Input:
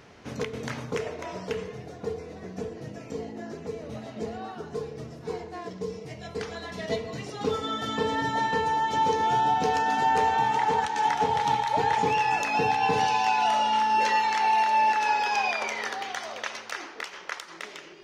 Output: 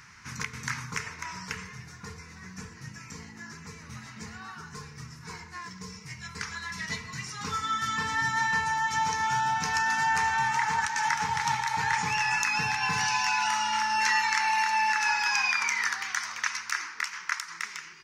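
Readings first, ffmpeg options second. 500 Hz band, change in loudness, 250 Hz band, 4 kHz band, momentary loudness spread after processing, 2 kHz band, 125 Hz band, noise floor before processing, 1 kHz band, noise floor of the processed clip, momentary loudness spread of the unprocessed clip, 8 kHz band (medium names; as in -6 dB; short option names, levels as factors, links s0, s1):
-20.0 dB, -1.0 dB, -8.0 dB, +1.5 dB, 19 LU, +4.5 dB, -2.0 dB, -45 dBFS, -4.5 dB, -47 dBFS, 15 LU, +8.0 dB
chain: -af "firequalizer=gain_entry='entry(160,0);entry(270,-12);entry(440,-18);entry(640,-24);entry(940,2);entry(1500,7);entry(2200,7);entry(3200,-3);entry(5400,10);entry(10000,7)':delay=0.05:min_phase=1,volume=0.841"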